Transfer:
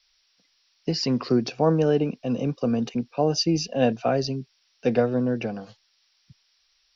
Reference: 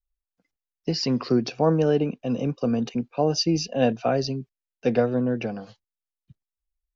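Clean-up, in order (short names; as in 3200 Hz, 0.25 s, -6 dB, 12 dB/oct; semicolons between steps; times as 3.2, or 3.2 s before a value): denoiser 23 dB, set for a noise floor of -67 dBFS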